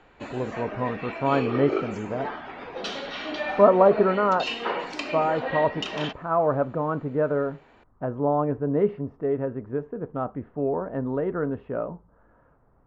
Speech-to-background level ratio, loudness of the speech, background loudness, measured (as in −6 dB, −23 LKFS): 6.5 dB, −25.5 LKFS, −32.0 LKFS